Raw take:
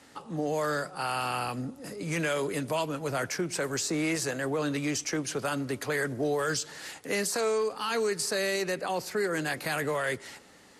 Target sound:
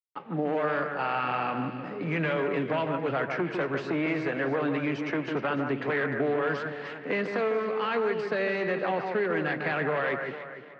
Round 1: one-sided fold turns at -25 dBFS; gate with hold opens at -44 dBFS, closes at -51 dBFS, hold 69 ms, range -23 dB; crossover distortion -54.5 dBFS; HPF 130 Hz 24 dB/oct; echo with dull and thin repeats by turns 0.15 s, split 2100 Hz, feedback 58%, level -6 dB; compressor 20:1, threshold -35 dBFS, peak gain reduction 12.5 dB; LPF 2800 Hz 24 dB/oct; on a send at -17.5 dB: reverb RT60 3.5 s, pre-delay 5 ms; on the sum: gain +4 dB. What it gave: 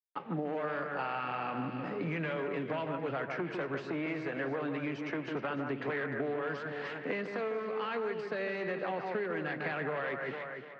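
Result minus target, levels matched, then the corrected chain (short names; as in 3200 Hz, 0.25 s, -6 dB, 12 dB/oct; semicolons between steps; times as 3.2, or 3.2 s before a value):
compressor: peak gain reduction +8 dB
one-sided fold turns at -25 dBFS; gate with hold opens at -44 dBFS, closes at -51 dBFS, hold 69 ms, range -23 dB; crossover distortion -54.5 dBFS; HPF 130 Hz 24 dB/oct; echo with dull and thin repeats by turns 0.15 s, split 2100 Hz, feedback 58%, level -6 dB; compressor 20:1, threshold -26.5 dBFS, peak gain reduction 4.5 dB; LPF 2800 Hz 24 dB/oct; on a send at -17.5 dB: reverb RT60 3.5 s, pre-delay 5 ms; on the sum: gain +4 dB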